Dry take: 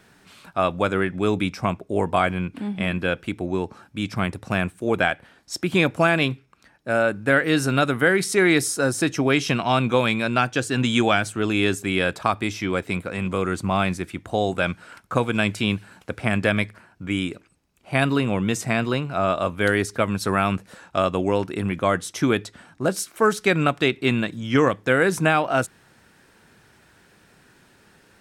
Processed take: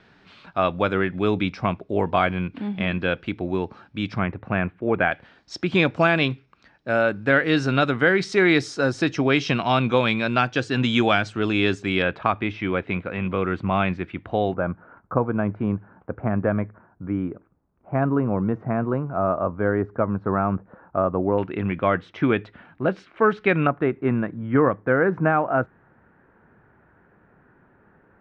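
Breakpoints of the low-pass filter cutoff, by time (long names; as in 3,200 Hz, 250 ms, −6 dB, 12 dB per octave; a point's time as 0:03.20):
low-pass filter 24 dB per octave
4,500 Hz
from 0:04.19 2,400 Hz
from 0:05.12 5,100 Hz
from 0:12.02 3,100 Hz
from 0:14.54 1,300 Hz
from 0:21.38 2,800 Hz
from 0:23.67 1,600 Hz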